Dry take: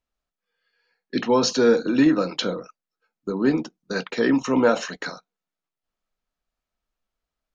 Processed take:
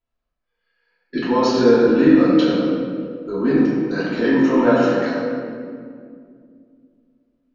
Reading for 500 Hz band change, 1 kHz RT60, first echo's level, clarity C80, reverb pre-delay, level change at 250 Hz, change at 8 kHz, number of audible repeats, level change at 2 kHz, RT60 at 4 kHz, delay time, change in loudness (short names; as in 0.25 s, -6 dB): +5.0 dB, 2.0 s, none, 0.0 dB, 3 ms, +6.5 dB, n/a, none, +3.0 dB, 1.3 s, none, +4.5 dB